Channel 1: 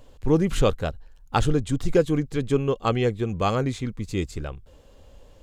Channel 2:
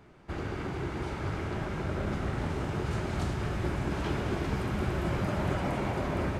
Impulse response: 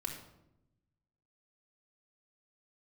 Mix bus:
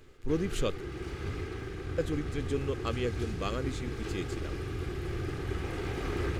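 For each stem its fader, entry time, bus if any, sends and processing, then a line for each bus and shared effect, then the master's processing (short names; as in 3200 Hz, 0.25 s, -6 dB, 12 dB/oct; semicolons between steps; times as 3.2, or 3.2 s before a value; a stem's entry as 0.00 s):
-6.5 dB, 0.00 s, muted 0.81–1.98, no send, bell 83 Hz -8.5 dB 2.5 oct
-2.0 dB, 0.00 s, send -5 dB, minimum comb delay 2.4 ms; auto duck -10 dB, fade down 0.70 s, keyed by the first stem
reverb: on, RT60 0.85 s, pre-delay 3 ms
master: bell 820 Hz -11 dB 0.87 oct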